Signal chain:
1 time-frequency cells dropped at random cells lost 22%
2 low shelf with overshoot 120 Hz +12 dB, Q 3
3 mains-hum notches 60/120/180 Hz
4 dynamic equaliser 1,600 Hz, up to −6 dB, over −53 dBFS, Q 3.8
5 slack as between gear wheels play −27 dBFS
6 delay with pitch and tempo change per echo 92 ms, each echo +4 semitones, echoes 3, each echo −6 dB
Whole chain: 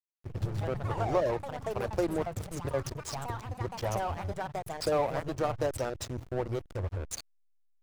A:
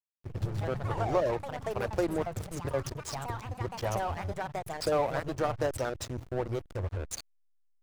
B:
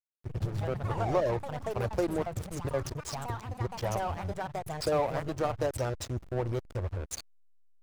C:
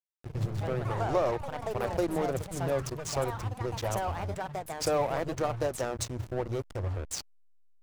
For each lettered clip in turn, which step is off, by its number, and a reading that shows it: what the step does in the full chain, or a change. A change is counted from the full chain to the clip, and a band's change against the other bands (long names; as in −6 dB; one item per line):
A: 4, 2 kHz band +2.0 dB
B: 3, 125 Hz band +1.5 dB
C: 1, 8 kHz band +3.0 dB